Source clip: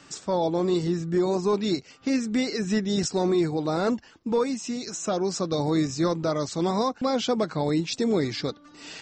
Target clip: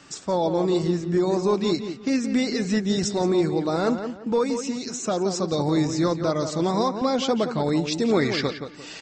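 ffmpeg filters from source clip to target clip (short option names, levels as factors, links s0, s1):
-filter_complex "[0:a]asettb=1/sr,asplit=3[s0][s1][s2];[s0]atrim=end=8.084[s3];[s1]atrim=start=8.08:end=8.48,asetpts=PTS-STARTPTS,afade=t=in:d=0.004:c=qsin,afade=t=out:st=0.396:d=0.004:c=qsin,equalizer=f=1500:w=0.62:g=9[s4];[s2]atrim=start=8.476[s5];[s3][s4]acrossfade=d=0.004:c1=hsin:c2=qsin[s6];[s6][s5]acrossfade=d=0.004:c1=qsin:c2=hsin,asplit=2[s7][s8];[s8]adelay=173,lowpass=f=2600:p=1,volume=0.398,asplit=2[s9][s10];[s10]adelay=173,lowpass=f=2600:p=1,volume=0.29,asplit=2[s11][s12];[s12]adelay=173,lowpass=f=2600:p=1,volume=0.29[s13];[s7][s9][s11][s13]amix=inputs=4:normalize=0,volume=1.19"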